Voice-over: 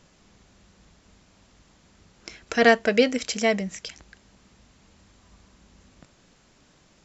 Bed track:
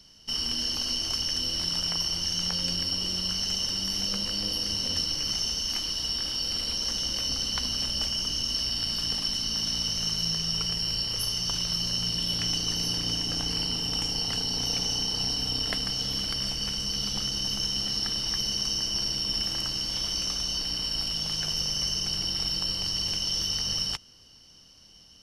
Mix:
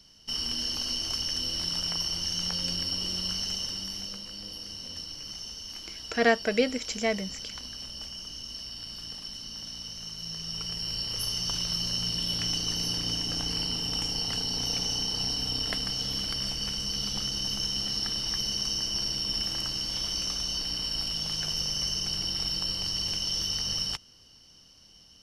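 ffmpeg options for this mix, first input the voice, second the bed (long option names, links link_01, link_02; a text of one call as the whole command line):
ffmpeg -i stem1.wav -i stem2.wav -filter_complex "[0:a]adelay=3600,volume=-5.5dB[link_01];[1:a]volume=7.5dB,afade=type=out:start_time=3.33:duration=0.9:silence=0.354813,afade=type=in:start_time=10.16:duration=1.19:silence=0.334965[link_02];[link_01][link_02]amix=inputs=2:normalize=0" out.wav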